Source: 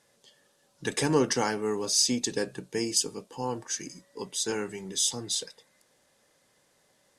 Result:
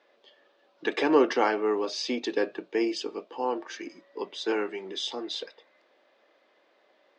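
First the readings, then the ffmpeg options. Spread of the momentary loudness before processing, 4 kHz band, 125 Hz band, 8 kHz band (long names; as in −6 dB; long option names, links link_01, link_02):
11 LU, −4.0 dB, below −15 dB, −18.0 dB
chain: -af "highpass=frequency=280:width=0.5412,highpass=frequency=280:width=1.3066,equalizer=frequency=340:width_type=q:width=4:gain=5,equalizer=frequency=650:width_type=q:width=4:gain=7,equalizer=frequency=1200:width_type=q:width=4:gain=4,equalizer=frequency=2400:width_type=q:width=4:gain=3,lowpass=frequency=3800:width=0.5412,lowpass=frequency=3800:width=1.3066,volume=2dB"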